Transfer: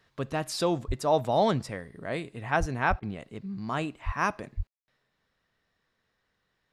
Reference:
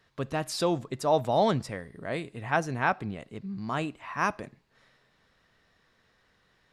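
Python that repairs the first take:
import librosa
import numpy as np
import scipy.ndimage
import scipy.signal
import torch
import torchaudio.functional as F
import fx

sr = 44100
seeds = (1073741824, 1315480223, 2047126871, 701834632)

y = fx.fix_deplosive(x, sr, at_s=(0.87, 2.59, 2.89, 4.05, 4.56))
y = fx.fix_ambience(y, sr, seeds[0], print_start_s=6.12, print_end_s=6.62, start_s=4.67, end_s=4.88)
y = fx.fix_interpolate(y, sr, at_s=(3.0,), length_ms=24.0)
y = fx.gain(y, sr, db=fx.steps((0.0, 0.0), (4.67, 9.5)))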